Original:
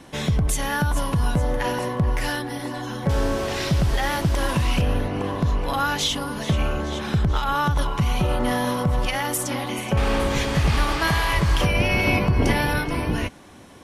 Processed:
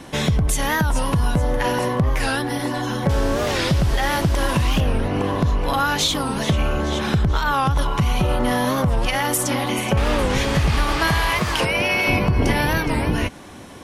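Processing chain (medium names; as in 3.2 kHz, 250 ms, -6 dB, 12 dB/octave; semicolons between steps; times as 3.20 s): 11.29–12.08 s: high-pass 190 Hz -> 580 Hz 6 dB/octave; compression 2:1, threshold -25 dBFS, peak gain reduction 6 dB; warped record 45 rpm, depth 160 cents; trim +6.5 dB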